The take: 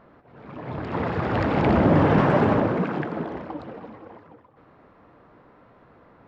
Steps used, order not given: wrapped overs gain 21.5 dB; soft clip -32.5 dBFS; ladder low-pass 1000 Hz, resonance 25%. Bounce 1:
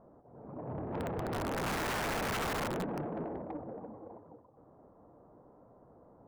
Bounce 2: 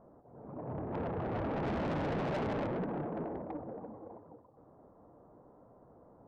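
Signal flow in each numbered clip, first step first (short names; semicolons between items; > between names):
ladder low-pass > wrapped overs > soft clip; ladder low-pass > soft clip > wrapped overs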